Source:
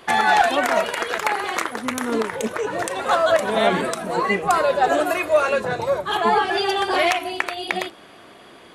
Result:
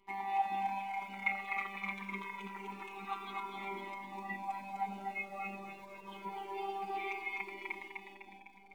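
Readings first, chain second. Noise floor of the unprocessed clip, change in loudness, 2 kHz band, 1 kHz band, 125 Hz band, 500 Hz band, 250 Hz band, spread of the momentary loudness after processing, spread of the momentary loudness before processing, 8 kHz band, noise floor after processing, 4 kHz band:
-46 dBFS, -19.0 dB, -17.5 dB, -17.0 dB, under -15 dB, -29.0 dB, -20.5 dB, 12 LU, 8 LU, under -30 dB, -57 dBFS, -26.0 dB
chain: vowel filter u; dynamic bell 2.1 kHz, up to +6 dB, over -52 dBFS, Q 4.7; hum 50 Hz, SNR 34 dB; time-frequency box 1.22–3.33 s, 920–4100 Hz +8 dB; robot voice 196 Hz; in parallel at -11 dB: word length cut 8-bit, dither none; on the sum: two-band feedback delay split 690 Hz, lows 577 ms, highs 252 ms, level -3 dB; Shepard-style flanger falling 0.26 Hz; trim -4 dB

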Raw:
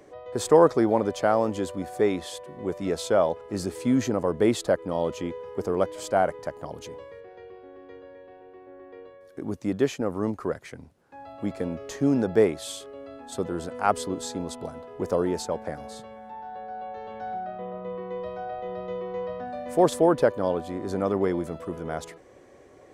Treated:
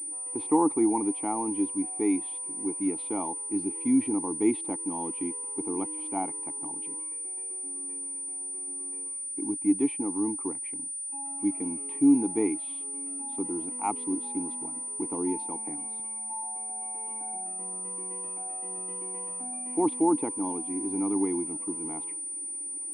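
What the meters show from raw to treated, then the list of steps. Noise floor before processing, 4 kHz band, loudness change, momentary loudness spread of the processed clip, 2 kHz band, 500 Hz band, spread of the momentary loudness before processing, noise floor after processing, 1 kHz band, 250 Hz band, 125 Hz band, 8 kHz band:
-51 dBFS, under -15 dB, -2.5 dB, 8 LU, -12.5 dB, -11.0 dB, 20 LU, -36 dBFS, -5.0 dB, +1.0 dB, -12.5 dB, +13.5 dB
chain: vowel filter u; class-D stage that switches slowly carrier 9.3 kHz; trim +7 dB

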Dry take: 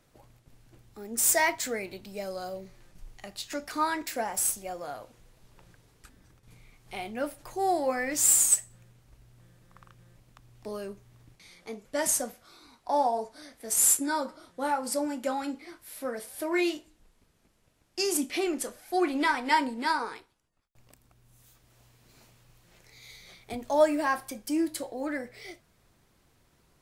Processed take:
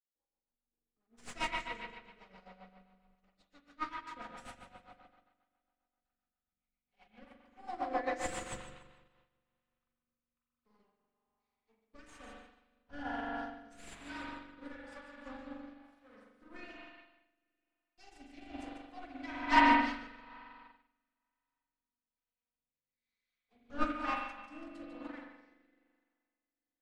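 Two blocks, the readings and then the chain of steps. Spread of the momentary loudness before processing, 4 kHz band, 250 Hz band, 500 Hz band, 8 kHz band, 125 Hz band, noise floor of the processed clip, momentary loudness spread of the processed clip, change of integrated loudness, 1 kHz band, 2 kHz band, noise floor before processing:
20 LU, -9.5 dB, -8.5 dB, -15.5 dB, -29.0 dB, -7.0 dB, under -85 dBFS, 19 LU, -8.0 dB, -5.5 dB, -5.5 dB, -67 dBFS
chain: comb filter that takes the minimum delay 4 ms; spectral noise reduction 6 dB; dynamic bell 410 Hz, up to -6 dB, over -44 dBFS, Q 0.89; flange 1.8 Hz, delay 7.8 ms, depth 8 ms, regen +70%; spring tank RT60 3.2 s, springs 42 ms, chirp 40 ms, DRR -4.5 dB; rotary cabinet horn 7.5 Hz, later 1.1 Hz, at 8.58 s; distance through air 110 m; thinning echo 147 ms, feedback 38%, high-pass 150 Hz, level -8 dB; upward expansion 2.5:1, over -50 dBFS; trim +5 dB

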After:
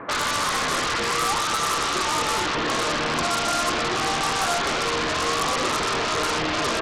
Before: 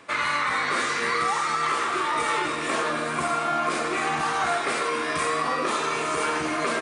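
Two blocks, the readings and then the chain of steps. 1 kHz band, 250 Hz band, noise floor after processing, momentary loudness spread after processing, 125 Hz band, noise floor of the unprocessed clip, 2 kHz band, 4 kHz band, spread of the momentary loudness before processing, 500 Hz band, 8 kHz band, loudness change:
+0.5 dB, +2.0 dB, -25 dBFS, 1 LU, +6.0 dB, -28 dBFS, +0.5 dB, +8.0 dB, 2 LU, +1.5 dB, +7.0 dB, +2.0 dB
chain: low-pass 1.6 kHz 24 dB/octave; in parallel at -10.5 dB: sine folder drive 20 dB, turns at -13.5 dBFS

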